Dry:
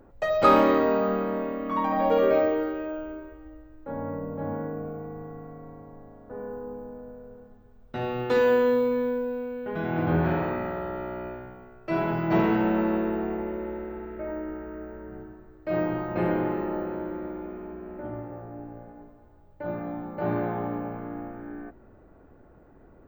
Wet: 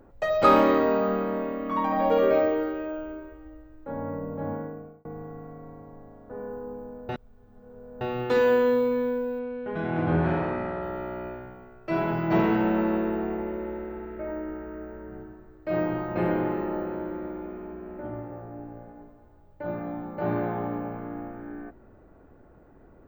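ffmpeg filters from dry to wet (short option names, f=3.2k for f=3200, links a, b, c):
-filter_complex "[0:a]asettb=1/sr,asplit=3[a][b][c];[a]atrim=end=9.394[d];[b]atrim=start=9.39:end=10.83,asetpts=PTS-STARTPTS,afade=t=in:d=0.004:c=qsin,afade=t=out:st=1.436:d=0.004:c=qsin,adynamicsmooth=sensitivity=5:basefreq=6.6k[e];[c]atrim=start=10.826[f];[d][e]acrossfade=d=0.004:c1=hsin:c2=qsin[g];[g][f]acrossfade=d=0.004:c1=qsin:c2=hsin,asplit=4[h][i][j][k];[h]atrim=end=5.05,asetpts=PTS-STARTPTS,afade=t=out:st=4.5:d=0.55[l];[i]atrim=start=5.05:end=7.092,asetpts=PTS-STARTPTS,afade=t=in:d=0.004:c=hsin[m];[j]atrim=start=7.088:end=8.012,asetpts=PTS-STARTPTS,areverse[n];[k]atrim=start=8.008[o];[l][m]concat=n=2:v=0:a=1[p];[p][n]acrossfade=d=0.004:c1=hsin:c2=hsin[q];[q][o]acrossfade=d=0.004:c1=hsin:c2=hsin"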